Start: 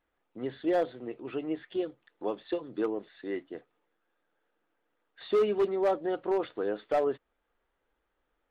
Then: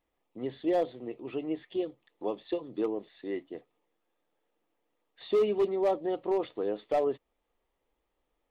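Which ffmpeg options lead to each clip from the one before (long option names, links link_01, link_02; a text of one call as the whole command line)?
ffmpeg -i in.wav -af "equalizer=frequency=1500:width_type=o:width=0.37:gain=-13.5" out.wav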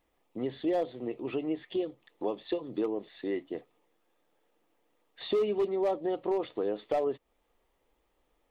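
ffmpeg -i in.wav -af "acompressor=threshold=-38dB:ratio=2,volume=6dB" out.wav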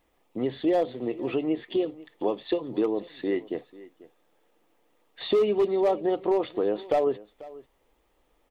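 ffmpeg -i in.wav -af "aecho=1:1:491:0.106,volume=5.5dB" out.wav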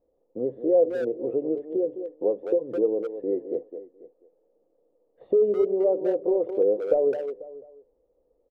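ffmpeg -i in.wav -filter_complex "[0:a]lowpass=frequency=510:width_type=q:width=5.5,asplit=2[link_01][link_02];[link_02]adelay=210,highpass=300,lowpass=3400,asoftclip=type=hard:threshold=-11dB,volume=-8dB[link_03];[link_01][link_03]amix=inputs=2:normalize=0,volume=-7dB" out.wav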